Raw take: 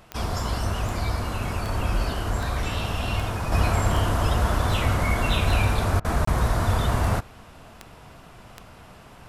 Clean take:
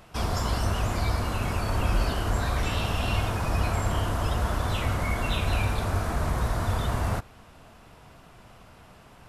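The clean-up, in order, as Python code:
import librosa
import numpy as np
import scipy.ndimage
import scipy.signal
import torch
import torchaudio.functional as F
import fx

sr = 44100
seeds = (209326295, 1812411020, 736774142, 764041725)

y = fx.fix_declick_ar(x, sr, threshold=10.0)
y = fx.fix_interpolate(y, sr, at_s=(6.25,), length_ms=24.0)
y = fx.fix_interpolate(y, sr, at_s=(6.0,), length_ms=45.0)
y = fx.fix_level(y, sr, at_s=3.52, step_db=-4.5)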